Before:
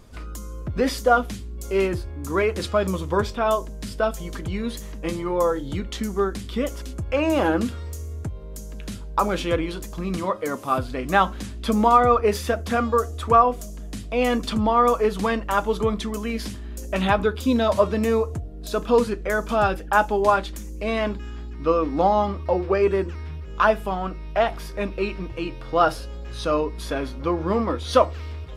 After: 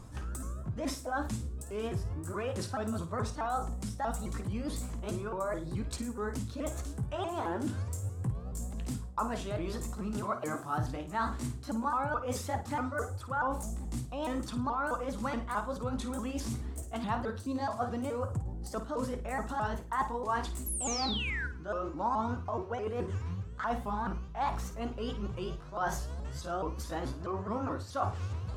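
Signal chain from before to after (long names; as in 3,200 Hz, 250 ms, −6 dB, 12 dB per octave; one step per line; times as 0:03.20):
pitch shifter swept by a sawtooth +4.5 semitones, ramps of 213 ms
low-shelf EQ 300 Hz +6 dB
reversed playback
downward compressor 10 to 1, threshold −28 dBFS, peak gain reduction 17.5 dB
reversed playback
octave-band graphic EQ 125/250/1,000/8,000 Hz +9/+3/+11/+11 dB
sound drawn into the spectrogram fall, 0:20.66–0:21.47, 1,400–12,000 Hz −28 dBFS
on a send: flutter between parallel walls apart 9.2 metres, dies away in 0.3 s
on the sum: level −8.5 dB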